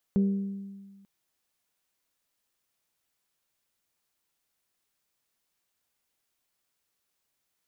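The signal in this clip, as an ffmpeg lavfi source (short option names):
-f lavfi -i "aevalsrc='0.112*pow(10,-3*t/1.56)*sin(2*PI*197*t)+0.0299*pow(10,-3*t/0.96)*sin(2*PI*394*t)+0.00794*pow(10,-3*t/0.845)*sin(2*PI*472.8*t)+0.00211*pow(10,-3*t/0.723)*sin(2*PI*591*t)+0.000562*pow(10,-3*t/0.591)*sin(2*PI*788*t)':d=0.89:s=44100"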